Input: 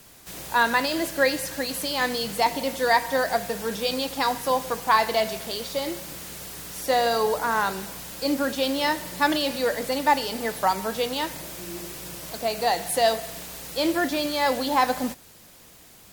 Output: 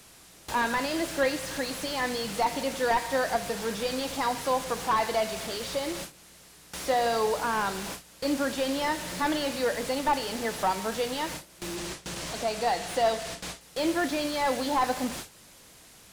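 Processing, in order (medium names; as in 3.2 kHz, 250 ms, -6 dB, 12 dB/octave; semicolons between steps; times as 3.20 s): one-bit delta coder 64 kbps, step -26 dBFS; gate with hold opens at -25 dBFS; 11.76–13.61 s: low-pass 8.8 kHz 12 dB/octave; in parallel at -1 dB: compression, threshold -40 dBFS, peak gain reduction 23.5 dB; on the sum: bit crusher 11-bit; slew-rate limiter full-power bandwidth 150 Hz; trim -4 dB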